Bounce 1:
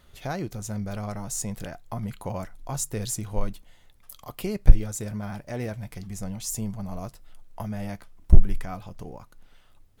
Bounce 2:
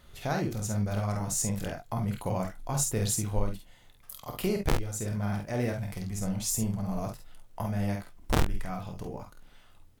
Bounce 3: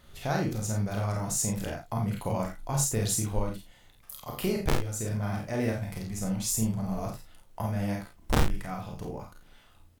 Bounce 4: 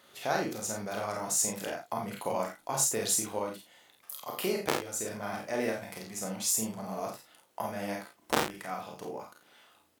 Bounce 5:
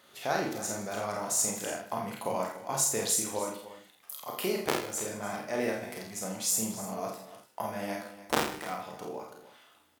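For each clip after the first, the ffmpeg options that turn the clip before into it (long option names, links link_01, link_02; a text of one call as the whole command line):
ffmpeg -i in.wav -af "aeval=exprs='(mod(2.51*val(0)+1,2)-1)/2.51':channel_layout=same,alimiter=limit=-16.5dB:level=0:latency=1:release=492,aecho=1:1:27|49|69:0.299|0.562|0.251" out.wav
ffmpeg -i in.wav -filter_complex "[0:a]asplit=2[link_01][link_02];[link_02]adelay=36,volume=-5dB[link_03];[link_01][link_03]amix=inputs=2:normalize=0" out.wav
ffmpeg -i in.wav -af "highpass=340,volume=1.5dB" out.wav
ffmpeg -i in.wav -af "aecho=1:1:82|153|295:0.251|0.15|0.178" out.wav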